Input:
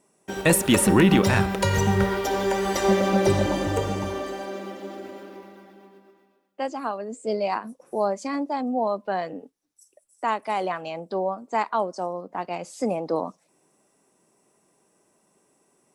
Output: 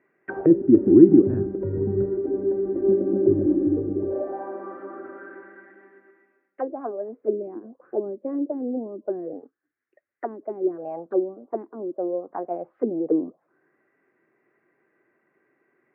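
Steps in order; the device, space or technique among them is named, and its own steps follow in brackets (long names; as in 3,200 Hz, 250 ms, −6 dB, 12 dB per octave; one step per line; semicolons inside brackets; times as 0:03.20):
envelope filter bass rig (envelope-controlled low-pass 310–2,100 Hz down, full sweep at −22 dBFS; loudspeaker in its box 73–2,200 Hz, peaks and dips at 74 Hz −8 dB, 190 Hz −9 dB, 350 Hz +6 dB, 620 Hz −3 dB, 910 Hz −8 dB, 1,600 Hz +6 dB)
level −3.5 dB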